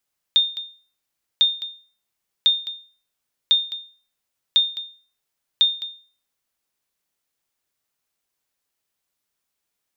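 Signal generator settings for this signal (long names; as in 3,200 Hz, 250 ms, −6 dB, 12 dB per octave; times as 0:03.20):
ping with an echo 3,640 Hz, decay 0.40 s, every 1.05 s, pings 6, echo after 0.21 s, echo −13.5 dB −8.5 dBFS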